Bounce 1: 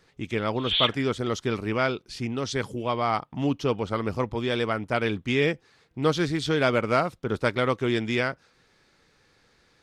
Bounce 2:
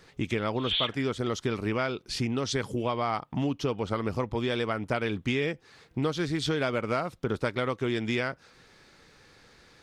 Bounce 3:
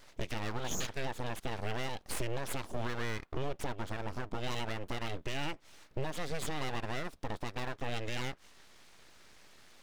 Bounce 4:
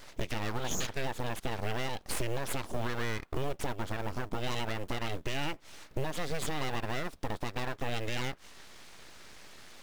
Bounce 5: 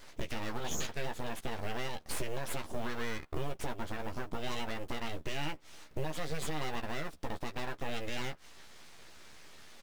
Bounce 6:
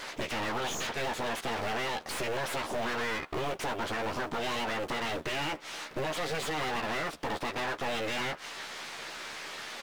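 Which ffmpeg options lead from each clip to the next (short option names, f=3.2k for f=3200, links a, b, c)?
-af "acompressor=threshold=-32dB:ratio=5,volume=6dB"
-af "alimiter=limit=-24dB:level=0:latency=1:release=229,aeval=exprs='abs(val(0))':c=same"
-filter_complex "[0:a]asplit=2[a][b];[b]acompressor=threshold=-41dB:ratio=12,volume=2dB[c];[a][c]amix=inputs=2:normalize=0,acrusher=bits=7:mode=log:mix=0:aa=0.000001"
-filter_complex "[0:a]asplit=2[a][b];[b]adelay=13,volume=-6dB[c];[a][c]amix=inputs=2:normalize=0,volume=-4dB"
-filter_complex "[0:a]asplit=2[a][b];[b]highpass=f=720:p=1,volume=30dB,asoftclip=type=tanh:threshold=-21.5dB[c];[a][c]amix=inputs=2:normalize=0,lowpass=f=3.2k:p=1,volume=-6dB,volume=-3.5dB"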